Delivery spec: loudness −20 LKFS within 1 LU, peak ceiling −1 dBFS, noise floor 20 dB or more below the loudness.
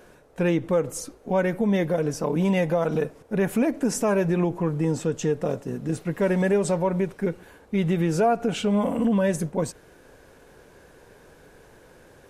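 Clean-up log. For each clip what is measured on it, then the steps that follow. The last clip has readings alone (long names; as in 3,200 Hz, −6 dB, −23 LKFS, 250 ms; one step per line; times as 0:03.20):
integrated loudness −24.5 LKFS; sample peak −11.5 dBFS; target loudness −20.0 LKFS
→ level +4.5 dB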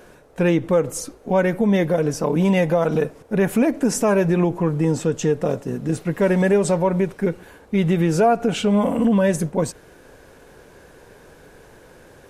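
integrated loudness −20.0 LKFS; sample peak −7.0 dBFS; background noise floor −48 dBFS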